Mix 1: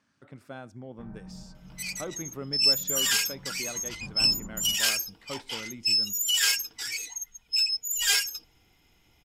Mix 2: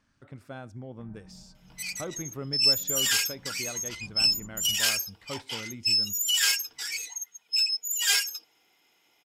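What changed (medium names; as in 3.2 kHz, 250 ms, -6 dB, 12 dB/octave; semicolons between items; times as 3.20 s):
speech: remove high-pass 140 Hz; first sound -7.0 dB; second sound: add high-pass 410 Hz 12 dB/octave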